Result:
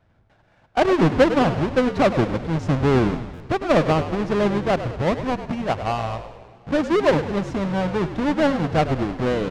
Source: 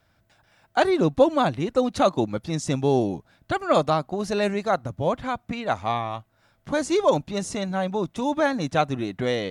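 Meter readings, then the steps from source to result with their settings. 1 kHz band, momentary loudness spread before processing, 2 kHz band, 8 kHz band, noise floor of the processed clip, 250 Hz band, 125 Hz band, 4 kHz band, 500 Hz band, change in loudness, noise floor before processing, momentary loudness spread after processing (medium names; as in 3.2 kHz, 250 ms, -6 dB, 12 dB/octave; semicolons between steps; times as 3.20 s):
+1.0 dB, 8 LU, +3.5 dB, no reading, -59 dBFS, +4.5 dB, +6.5 dB, +1.0 dB, +2.5 dB, +3.0 dB, -66 dBFS, 8 LU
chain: square wave that keeps the level; tape spacing loss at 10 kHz 25 dB; frequency-shifting echo 102 ms, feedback 55%, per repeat -59 Hz, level -11 dB; buffer glitch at 3.33 s, samples 512, times 5; modulated delay 121 ms, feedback 76%, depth 138 cents, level -24 dB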